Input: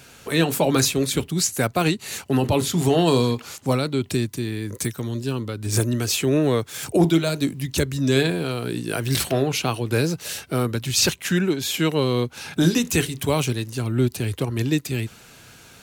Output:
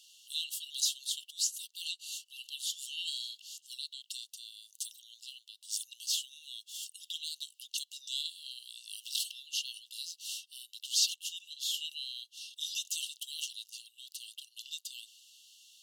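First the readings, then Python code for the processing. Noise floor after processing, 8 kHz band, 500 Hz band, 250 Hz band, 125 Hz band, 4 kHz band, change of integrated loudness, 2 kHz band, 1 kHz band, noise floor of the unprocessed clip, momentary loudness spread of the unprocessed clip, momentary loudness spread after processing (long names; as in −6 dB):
−71 dBFS, −9.0 dB, below −40 dB, below −40 dB, below −40 dB, −6.5 dB, −14.5 dB, −20.5 dB, below −40 dB, −48 dBFS, 8 LU, 15 LU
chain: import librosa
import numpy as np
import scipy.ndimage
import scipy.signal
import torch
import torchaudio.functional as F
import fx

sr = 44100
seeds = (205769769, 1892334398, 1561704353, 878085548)

y = fx.brickwall_highpass(x, sr, low_hz=2700.0)
y = fx.high_shelf(y, sr, hz=8400.0, db=-10.0)
y = y * 10.0 ** (-5.0 / 20.0)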